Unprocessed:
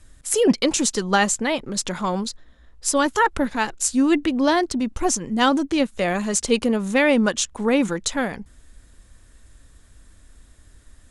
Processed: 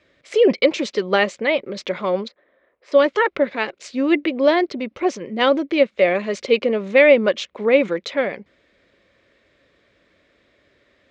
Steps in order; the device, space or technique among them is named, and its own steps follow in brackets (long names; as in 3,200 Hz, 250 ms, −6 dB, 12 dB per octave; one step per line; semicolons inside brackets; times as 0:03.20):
0:02.28–0:02.92: three-way crossover with the lows and the highs turned down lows −14 dB, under 290 Hz, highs −19 dB, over 2,200 Hz
kitchen radio (loudspeaker in its box 220–4,200 Hz, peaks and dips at 250 Hz −4 dB, 390 Hz +5 dB, 560 Hz +10 dB, 860 Hz −6 dB, 1,500 Hz −3 dB, 2,200 Hz +9 dB)